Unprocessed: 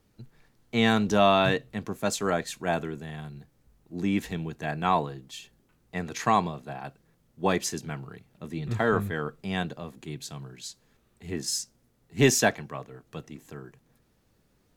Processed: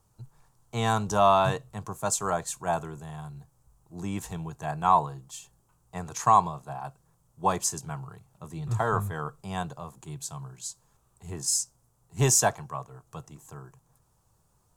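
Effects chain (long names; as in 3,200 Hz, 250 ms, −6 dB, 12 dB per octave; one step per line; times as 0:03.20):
octave-band graphic EQ 125/250/500/1,000/2,000/4,000/8,000 Hz +5/−12/−4/+10/−12/−6/+9 dB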